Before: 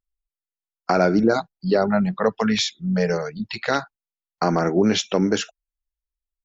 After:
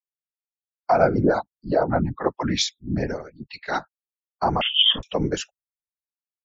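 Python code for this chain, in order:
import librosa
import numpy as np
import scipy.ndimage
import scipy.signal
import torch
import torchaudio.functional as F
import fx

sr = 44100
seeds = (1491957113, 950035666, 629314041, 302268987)

y = fx.bin_expand(x, sr, power=1.5)
y = fx.dynamic_eq(y, sr, hz=780.0, q=2.5, threshold_db=-38.0, ratio=4.0, max_db=6)
y = fx.whisperise(y, sr, seeds[0])
y = fx.freq_invert(y, sr, carrier_hz=3400, at=(4.61, 5.03))
y = fx.band_widen(y, sr, depth_pct=40)
y = F.gain(torch.from_numpy(y), -1.5).numpy()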